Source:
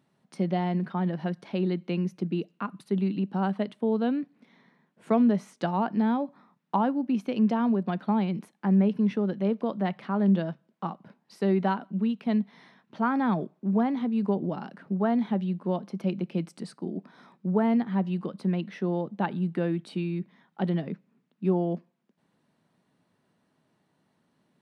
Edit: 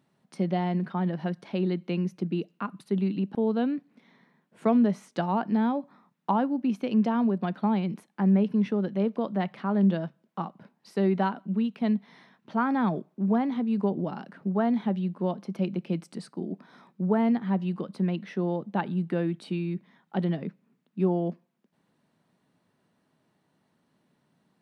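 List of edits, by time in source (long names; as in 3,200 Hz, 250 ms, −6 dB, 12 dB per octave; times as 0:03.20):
0:03.35–0:03.80: remove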